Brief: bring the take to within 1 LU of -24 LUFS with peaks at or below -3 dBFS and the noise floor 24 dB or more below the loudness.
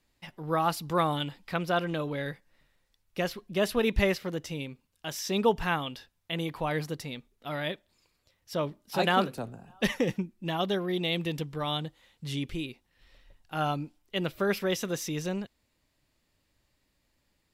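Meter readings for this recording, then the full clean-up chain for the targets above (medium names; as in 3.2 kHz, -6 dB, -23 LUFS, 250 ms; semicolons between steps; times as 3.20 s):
dropouts 1; longest dropout 1.1 ms; loudness -31.0 LUFS; peak level -11.0 dBFS; loudness target -24.0 LUFS
-> interpolate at 9.38 s, 1.1 ms; trim +7 dB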